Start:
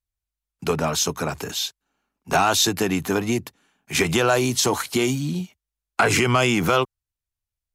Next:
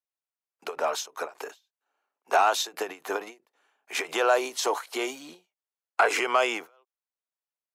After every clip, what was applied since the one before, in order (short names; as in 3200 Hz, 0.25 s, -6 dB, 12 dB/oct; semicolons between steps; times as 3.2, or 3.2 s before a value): HPF 460 Hz 24 dB/oct; high shelf 2400 Hz -11 dB; ending taper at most 230 dB/s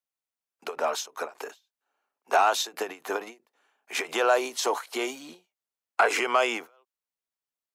bell 230 Hz +5 dB 0.24 oct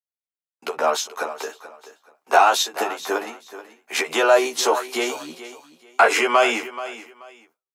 doubler 13 ms -3 dB; feedback echo 0.431 s, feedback 23%, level -14.5 dB; gate with hold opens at -56 dBFS; gain +5 dB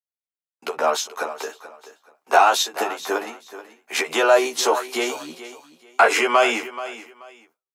nothing audible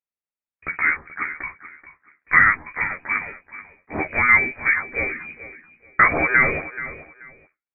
inverted band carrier 2700 Hz